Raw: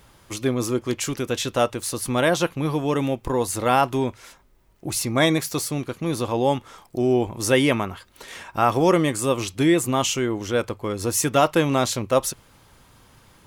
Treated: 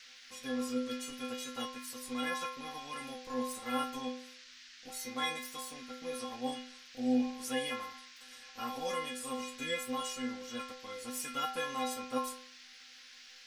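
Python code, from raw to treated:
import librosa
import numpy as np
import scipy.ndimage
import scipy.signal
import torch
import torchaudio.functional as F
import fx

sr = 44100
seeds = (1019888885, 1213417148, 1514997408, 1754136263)

y = fx.spec_clip(x, sr, under_db=13)
y = fx.stiff_resonator(y, sr, f0_hz=250.0, decay_s=0.58, stiffness=0.008)
y = fx.dmg_noise_band(y, sr, seeds[0], low_hz=1500.0, high_hz=5800.0, level_db=-55.0)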